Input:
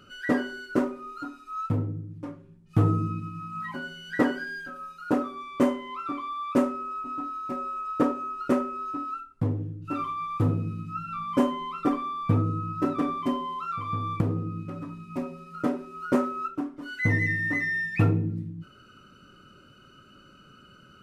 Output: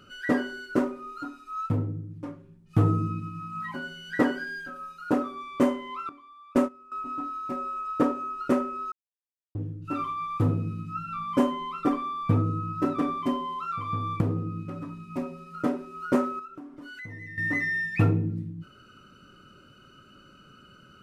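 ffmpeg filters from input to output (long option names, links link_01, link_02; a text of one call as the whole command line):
ffmpeg -i in.wav -filter_complex "[0:a]asettb=1/sr,asplit=3[link_01][link_02][link_03];[link_01]atrim=end=6.094[link_04];[link_02]atrim=start=6.09:end=6.92,asetpts=PTS-STARTPTS,afade=type=in:duration=0.004:curve=qsin,afade=type=out:start_time=0.826:duration=0.004:curve=qsin,agate=range=-17dB:threshold=-27dB:ratio=16:release=100:detection=peak[link_05];[link_03]atrim=start=6.916[link_06];[link_04][link_05]acrossfade=duration=0.004:curve1=hsin:curve2=qsin[link_07];[link_07][link_06]acrossfade=duration=0.004:curve1=qsin:curve2=hsin,asettb=1/sr,asplit=3[link_08][link_09][link_10];[link_08]atrim=end=16.394[link_11];[link_09]atrim=start=16.39:end=17.38,asetpts=PTS-STARTPTS,afade=type=in:duration=0.004:curve=qsin,afade=type=out:start_time=0.986:duration=0.004:curve=qsin,acompressor=threshold=-40dB:ratio=5:attack=3.2:release=140:knee=1:detection=peak[link_12];[link_10]atrim=start=17.376[link_13];[link_11][link_12]acrossfade=duration=0.004:curve1=hsin:curve2=qsin[link_14];[link_14][link_13]acrossfade=duration=0.004:curve1=qsin:curve2=hsin,asplit=3[link_15][link_16][link_17];[link_15]atrim=end=8.92,asetpts=PTS-STARTPTS,afade=type=out:start_time=8.916:duration=0.004:curve=hsin[link_18];[link_16]atrim=start=8.92:end=9.55,asetpts=PTS-STARTPTS,volume=0[link_19];[link_17]atrim=start=9.55,asetpts=PTS-STARTPTS,afade=type=in:duration=0.004:curve=hsin[link_20];[link_18][link_19][link_20]concat=n=3:v=0:a=1" out.wav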